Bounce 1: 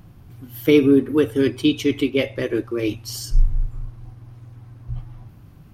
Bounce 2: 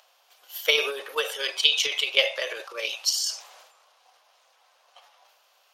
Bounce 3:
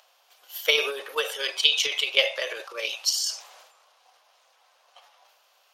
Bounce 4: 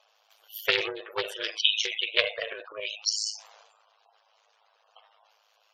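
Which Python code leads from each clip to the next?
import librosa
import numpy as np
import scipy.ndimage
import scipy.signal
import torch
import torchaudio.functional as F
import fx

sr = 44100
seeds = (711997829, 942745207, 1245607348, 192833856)

y1 = scipy.signal.sosfilt(scipy.signal.butter(8, 540.0, 'highpass', fs=sr, output='sos'), x)
y1 = fx.band_shelf(y1, sr, hz=4500.0, db=8.5, octaves=1.7)
y1 = fx.transient(y1, sr, attack_db=7, sustain_db=11)
y1 = y1 * librosa.db_to_amplitude(-3.5)
y2 = y1
y3 = y2 * np.sin(2.0 * np.pi * 53.0 * np.arange(len(y2)) / sr)
y3 = fx.spec_gate(y3, sr, threshold_db=-15, keep='strong')
y3 = fx.doppler_dist(y3, sr, depth_ms=0.17)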